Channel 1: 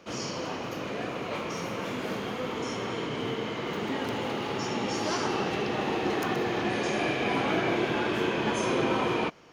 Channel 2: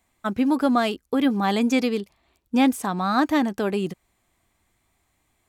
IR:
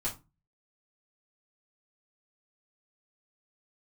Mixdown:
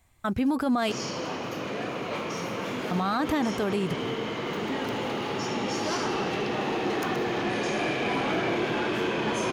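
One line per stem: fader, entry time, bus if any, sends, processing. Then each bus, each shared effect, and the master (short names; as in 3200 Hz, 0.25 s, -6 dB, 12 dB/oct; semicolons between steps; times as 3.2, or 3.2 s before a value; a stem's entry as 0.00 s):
+2.0 dB, 0.80 s, no send, HPF 86 Hz; soft clip -22 dBFS, distortion -18 dB
+2.0 dB, 0.00 s, muted 0.92–2.91, no send, resonant low shelf 160 Hz +7.5 dB, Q 1.5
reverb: off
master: limiter -18.5 dBFS, peak gain reduction 11.5 dB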